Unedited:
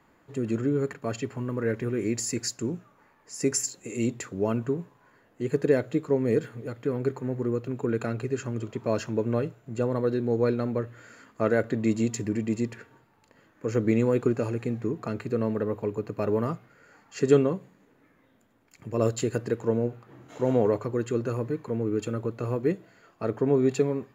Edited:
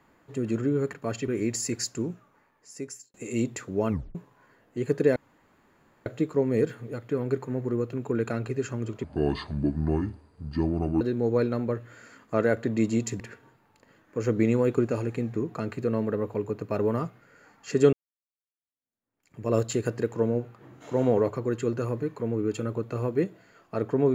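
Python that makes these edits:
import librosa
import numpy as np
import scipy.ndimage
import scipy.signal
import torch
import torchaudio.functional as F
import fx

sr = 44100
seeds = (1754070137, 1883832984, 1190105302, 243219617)

y = fx.edit(x, sr, fx.cut(start_s=1.28, length_s=0.64),
    fx.fade_out_span(start_s=2.64, length_s=1.14),
    fx.tape_stop(start_s=4.53, length_s=0.26),
    fx.insert_room_tone(at_s=5.8, length_s=0.9),
    fx.speed_span(start_s=8.78, length_s=1.3, speed=0.66),
    fx.cut(start_s=12.27, length_s=0.41),
    fx.fade_in_span(start_s=17.41, length_s=1.5, curve='exp'), tone=tone)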